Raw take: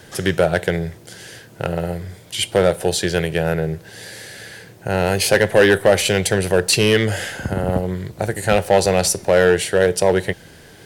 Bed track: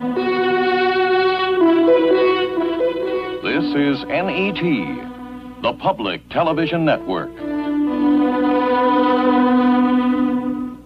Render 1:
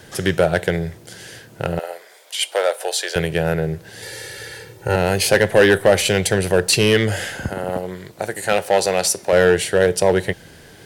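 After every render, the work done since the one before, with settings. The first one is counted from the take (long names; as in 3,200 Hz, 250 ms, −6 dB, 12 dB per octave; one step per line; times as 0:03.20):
0:01.79–0:03.16: high-pass filter 530 Hz 24 dB per octave
0:04.02–0:04.96: comb filter 2.2 ms, depth 94%
0:07.49–0:09.33: high-pass filter 420 Hz 6 dB per octave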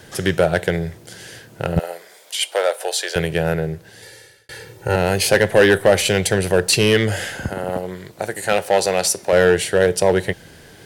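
0:01.76–0:02.39: bass and treble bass +14 dB, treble +3 dB
0:03.51–0:04.49: fade out linear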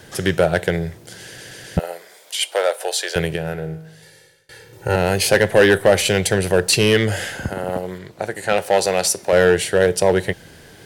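0:01.25: stutter in place 0.13 s, 4 plays
0:03.36–0:04.73: tuned comb filter 53 Hz, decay 0.88 s
0:07.98–0:08.58: high-shelf EQ 7,600 Hz −10.5 dB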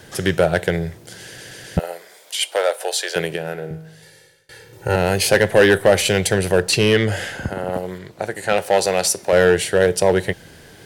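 0:02.56–0:03.71: high-pass filter 210 Hz
0:06.62–0:07.74: high-shelf EQ 6,600 Hz −6.5 dB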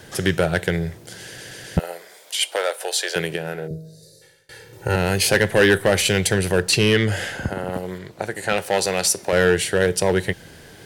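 0:03.67–0:04.22: gain on a spectral selection 690–3,600 Hz −23 dB
dynamic equaliser 630 Hz, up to −6 dB, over −28 dBFS, Q 1.3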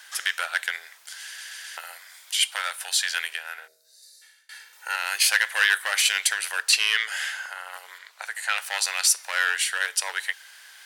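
high-pass filter 1,100 Hz 24 dB per octave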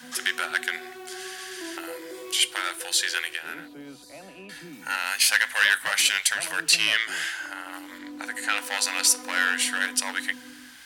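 mix in bed track −25.5 dB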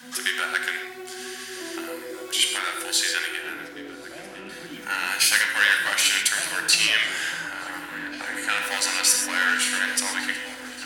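echo whose low-pass opens from repeat to repeat 584 ms, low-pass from 200 Hz, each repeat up 1 octave, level −3 dB
reverb whose tail is shaped and stops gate 160 ms flat, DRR 3.5 dB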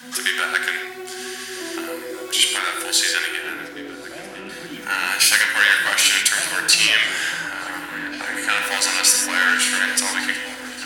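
level +4.5 dB
brickwall limiter −2 dBFS, peak gain reduction 2 dB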